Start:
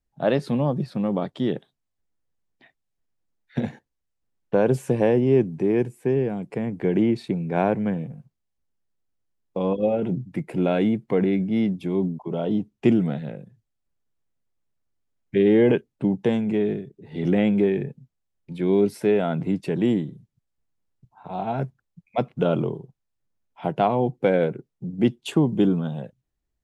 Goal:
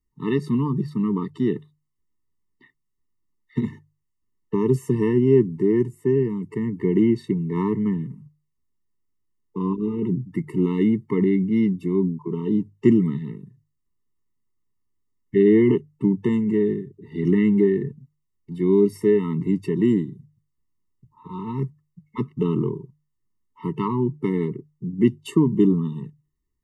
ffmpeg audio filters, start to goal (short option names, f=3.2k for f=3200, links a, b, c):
-af "equalizer=f=3.5k:w=1.6:g=-6.5,bandreject=f=50:t=h:w=6,bandreject=f=100:t=h:w=6,bandreject=f=150:t=h:w=6,afftfilt=real='re*eq(mod(floor(b*sr/1024/440),2),0)':imag='im*eq(mod(floor(b*sr/1024/440),2),0)':win_size=1024:overlap=0.75,volume=2.5dB"